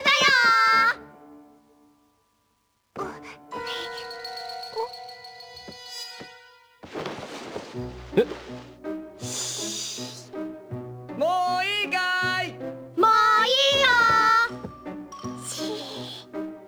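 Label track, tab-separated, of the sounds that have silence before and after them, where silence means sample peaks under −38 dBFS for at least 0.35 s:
2.960000	6.300000	sound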